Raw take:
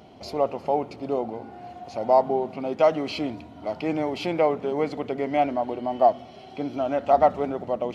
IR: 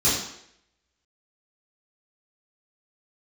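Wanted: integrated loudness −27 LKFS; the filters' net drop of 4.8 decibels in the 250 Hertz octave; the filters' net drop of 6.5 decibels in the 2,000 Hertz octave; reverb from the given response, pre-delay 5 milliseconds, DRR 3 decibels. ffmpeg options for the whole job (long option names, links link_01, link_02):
-filter_complex "[0:a]equalizer=frequency=250:width_type=o:gain=-6,equalizer=frequency=2000:width_type=o:gain=-8,asplit=2[link_01][link_02];[1:a]atrim=start_sample=2205,adelay=5[link_03];[link_02][link_03]afir=irnorm=-1:irlink=0,volume=-18dB[link_04];[link_01][link_04]amix=inputs=2:normalize=0,volume=-2.5dB"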